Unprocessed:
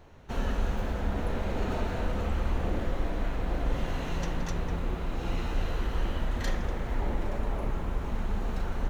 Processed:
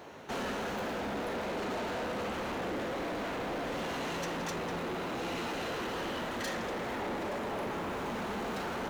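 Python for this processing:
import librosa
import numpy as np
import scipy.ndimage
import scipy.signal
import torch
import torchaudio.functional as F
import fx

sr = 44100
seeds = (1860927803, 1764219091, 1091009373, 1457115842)

p1 = scipy.signal.sosfilt(scipy.signal.butter(2, 250.0, 'highpass', fs=sr, output='sos'), x)
p2 = fx.rider(p1, sr, range_db=10, speed_s=0.5)
p3 = p1 + (p2 * librosa.db_to_amplitude(2.5))
y = 10.0 ** (-32.5 / 20.0) * np.tanh(p3 / 10.0 ** (-32.5 / 20.0))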